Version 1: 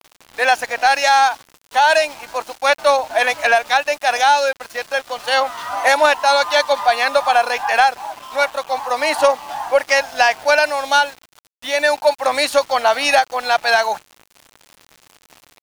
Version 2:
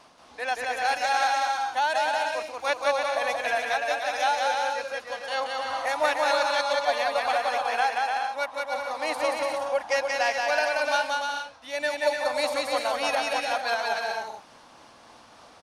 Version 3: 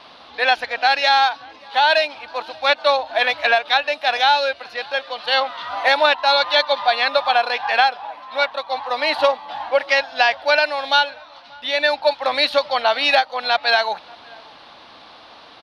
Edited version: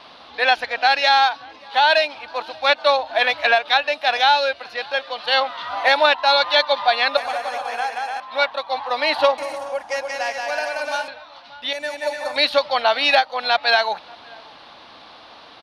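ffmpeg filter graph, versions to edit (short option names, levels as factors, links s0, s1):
-filter_complex "[1:a]asplit=3[s0][s1][s2];[2:a]asplit=4[s3][s4][s5][s6];[s3]atrim=end=7.172[s7];[s0]atrim=start=7.168:end=8.202[s8];[s4]atrim=start=8.198:end=9.382[s9];[s1]atrim=start=9.378:end=11.082[s10];[s5]atrim=start=11.078:end=11.732[s11];[s2]atrim=start=11.728:end=12.362[s12];[s6]atrim=start=12.358[s13];[s7][s8]acrossfade=d=0.004:c1=hsin:c2=hsin[s14];[s14][s9]acrossfade=d=0.004:c1=hsin:c2=hsin[s15];[s15][s10]acrossfade=d=0.004:c1=hsin:c2=hsin[s16];[s16][s11]acrossfade=d=0.004:c1=hsin:c2=hsin[s17];[s17][s12]acrossfade=d=0.004:c1=hsin:c2=hsin[s18];[s18][s13]acrossfade=d=0.004:c1=hsin:c2=hsin"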